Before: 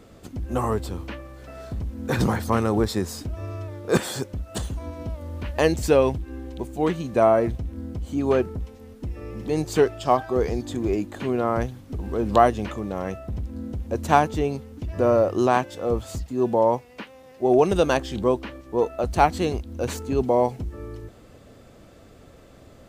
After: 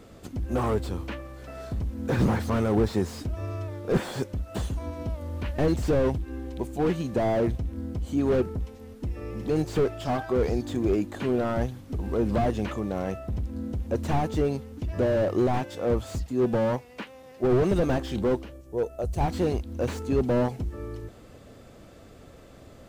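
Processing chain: 18.43–19.21 s: graphic EQ 250/1000/2000/4000 Hz -9/-11/-11/-8 dB; slew-rate limiter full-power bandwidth 43 Hz

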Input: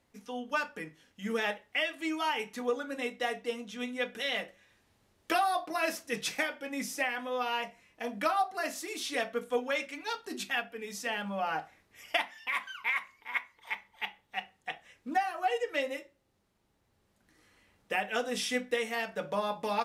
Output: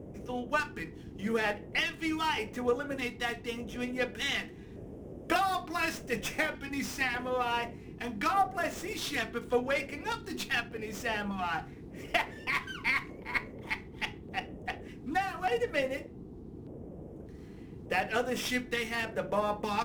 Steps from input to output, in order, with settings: band noise 36–480 Hz -47 dBFS; LFO notch square 0.84 Hz 570–4200 Hz; sliding maximum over 3 samples; trim +2 dB

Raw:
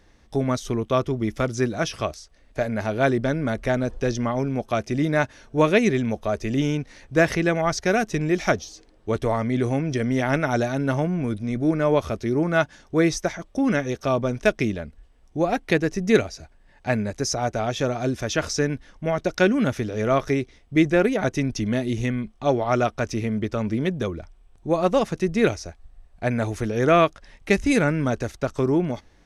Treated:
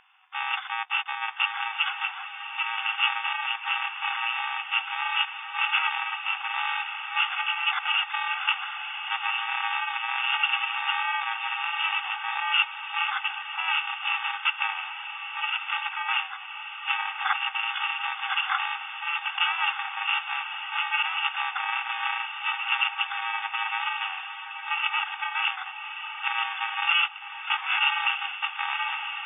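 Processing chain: bit-reversed sample order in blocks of 128 samples; sine folder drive 6 dB, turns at -4.5 dBFS; on a send: echo that smears into a reverb 1173 ms, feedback 44%, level -8 dB; on the sum: FFT band-pass 750–3600 Hz

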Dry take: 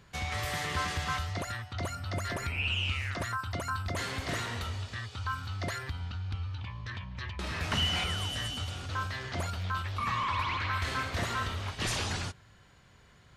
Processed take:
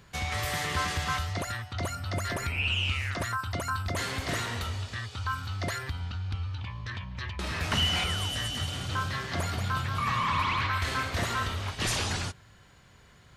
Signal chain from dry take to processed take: treble shelf 9.3 kHz +5 dB; 8.36–10.67 s: frequency-shifting echo 183 ms, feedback 52%, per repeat +36 Hz, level -6.5 dB; trim +2.5 dB

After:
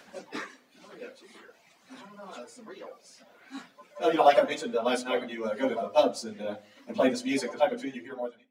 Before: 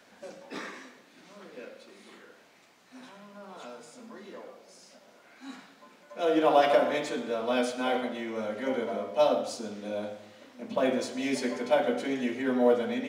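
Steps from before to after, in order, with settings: fade out at the end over 1.85 s; reverb removal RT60 1.5 s; hum notches 50/100/150/200/250/300/350/400 Hz; plain phase-vocoder stretch 0.65×; trim +7 dB

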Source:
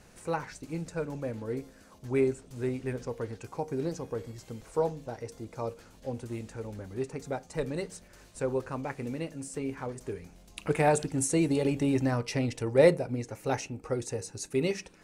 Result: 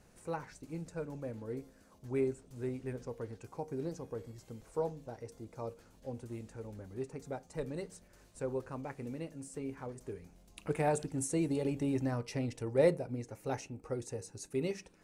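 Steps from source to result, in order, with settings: peaking EQ 3 kHz -4 dB 2.9 oct; trim -6 dB

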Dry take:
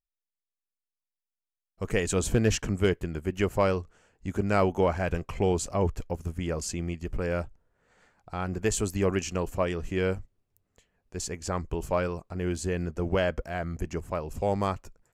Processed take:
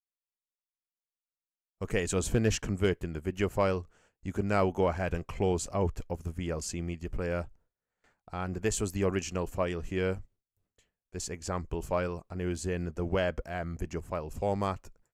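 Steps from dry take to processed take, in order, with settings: gate with hold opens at -50 dBFS; trim -3 dB

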